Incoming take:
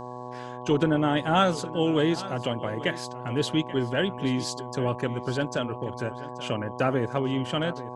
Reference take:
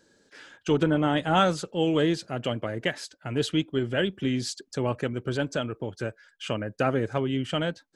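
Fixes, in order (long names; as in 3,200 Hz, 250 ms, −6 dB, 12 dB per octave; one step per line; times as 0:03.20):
hum removal 123.7 Hz, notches 9
echo removal 833 ms −16.5 dB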